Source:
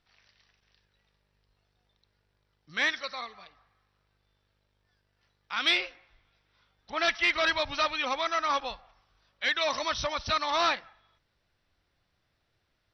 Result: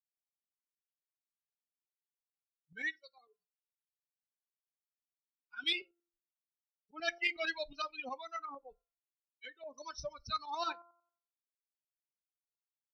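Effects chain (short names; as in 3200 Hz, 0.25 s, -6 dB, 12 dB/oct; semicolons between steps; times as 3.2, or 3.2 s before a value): per-bin expansion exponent 3; de-hum 343.9 Hz, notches 4; 8.42–9.78 treble ducked by the level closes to 490 Hz, closed at -32 dBFS; tremolo saw up 11 Hz, depth 60%; on a send: reverb RT60 0.25 s, pre-delay 5 ms, DRR 18 dB; on the sum: gain -2 dB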